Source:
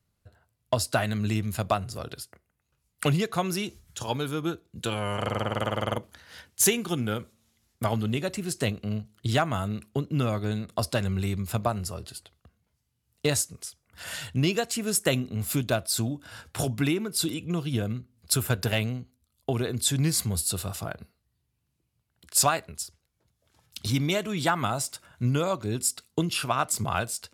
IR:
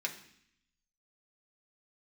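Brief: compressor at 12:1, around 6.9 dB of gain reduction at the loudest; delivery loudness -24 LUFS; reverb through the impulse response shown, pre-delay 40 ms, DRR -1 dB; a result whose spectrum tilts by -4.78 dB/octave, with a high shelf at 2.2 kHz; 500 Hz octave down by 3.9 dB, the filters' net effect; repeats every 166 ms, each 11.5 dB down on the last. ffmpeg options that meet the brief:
-filter_complex "[0:a]equalizer=f=500:t=o:g=-4.5,highshelf=f=2200:g=-8.5,acompressor=threshold=0.0398:ratio=12,aecho=1:1:166|332|498:0.266|0.0718|0.0194,asplit=2[s0][s1];[1:a]atrim=start_sample=2205,adelay=40[s2];[s1][s2]afir=irnorm=-1:irlink=0,volume=0.794[s3];[s0][s3]amix=inputs=2:normalize=0,volume=2.82"

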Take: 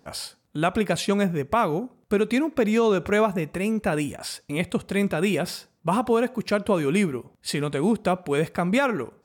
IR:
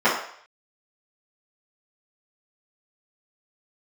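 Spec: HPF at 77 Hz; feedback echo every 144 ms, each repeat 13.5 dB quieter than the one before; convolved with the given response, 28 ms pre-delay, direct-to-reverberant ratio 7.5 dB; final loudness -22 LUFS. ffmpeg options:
-filter_complex "[0:a]highpass=77,aecho=1:1:144|288:0.211|0.0444,asplit=2[s0][s1];[1:a]atrim=start_sample=2205,adelay=28[s2];[s1][s2]afir=irnorm=-1:irlink=0,volume=0.0376[s3];[s0][s3]amix=inputs=2:normalize=0,volume=1.19"

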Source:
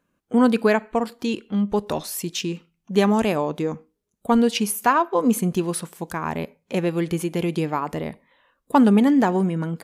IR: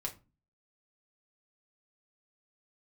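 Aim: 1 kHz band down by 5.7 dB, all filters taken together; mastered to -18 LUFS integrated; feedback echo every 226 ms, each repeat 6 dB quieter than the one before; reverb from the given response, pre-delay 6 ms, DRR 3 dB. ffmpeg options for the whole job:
-filter_complex "[0:a]equalizer=f=1000:t=o:g=-7,aecho=1:1:226|452|678|904|1130|1356:0.501|0.251|0.125|0.0626|0.0313|0.0157,asplit=2[s0][s1];[1:a]atrim=start_sample=2205,adelay=6[s2];[s1][s2]afir=irnorm=-1:irlink=0,volume=0.708[s3];[s0][s3]amix=inputs=2:normalize=0,volume=1.33"

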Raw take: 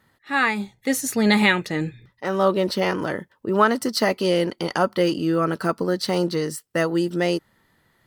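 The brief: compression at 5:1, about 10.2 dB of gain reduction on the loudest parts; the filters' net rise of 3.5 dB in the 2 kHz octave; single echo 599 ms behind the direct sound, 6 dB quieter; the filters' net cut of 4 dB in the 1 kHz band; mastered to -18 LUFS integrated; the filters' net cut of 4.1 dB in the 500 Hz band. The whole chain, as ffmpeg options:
-af "equalizer=f=500:t=o:g=-4,equalizer=f=1000:t=o:g=-6.5,equalizer=f=2000:t=o:g=6,acompressor=threshold=0.0708:ratio=5,aecho=1:1:599:0.501,volume=2.82"

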